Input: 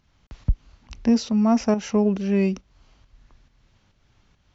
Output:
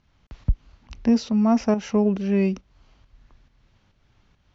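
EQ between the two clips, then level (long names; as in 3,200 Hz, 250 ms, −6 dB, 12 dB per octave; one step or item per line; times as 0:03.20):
high-frequency loss of the air 68 metres
0.0 dB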